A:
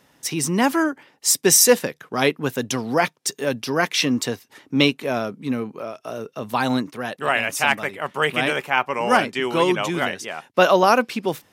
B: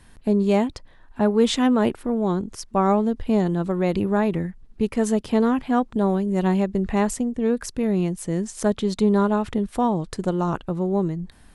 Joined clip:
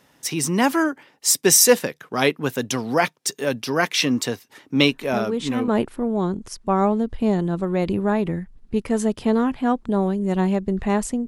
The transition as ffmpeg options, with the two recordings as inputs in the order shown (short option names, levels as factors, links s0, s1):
-filter_complex "[1:a]asplit=2[s0][s1];[0:a]apad=whole_dur=11.27,atrim=end=11.27,atrim=end=5.682[s2];[s1]atrim=start=1.748:end=7.34[s3];[s0]atrim=start=0.97:end=1.75,asetpts=PTS-STARTPTS,volume=0.422,afade=t=in:d=0.004:c=hsin,afade=t=out:st=0.776:d=0.004:c=hsin,adelay=4900[s4];[s2][s3]acrossfade=d=0.004:c1=hsin:c2=hsin[s5];[s5][s4]amix=inputs=2:normalize=0"